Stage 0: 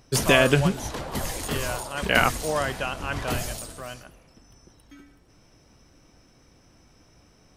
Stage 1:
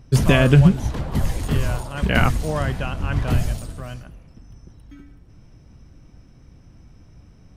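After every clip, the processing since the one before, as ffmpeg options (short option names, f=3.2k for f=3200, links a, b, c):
-af "bass=f=250:g=14,treble=f=4k:g=-5,volume=-1dB"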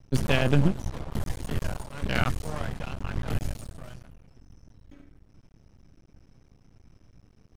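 -af "aeval=exprs='max(val(0),0)':c=same,volume=-5dB"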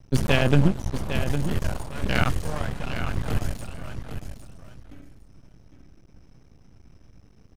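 -af "aecho=1:1:806|1612:0.355|0.0532,volume=3dB"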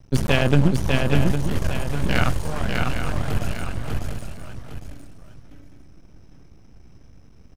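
-af "aecho=1:1:598:0.668,volume=1.5dB"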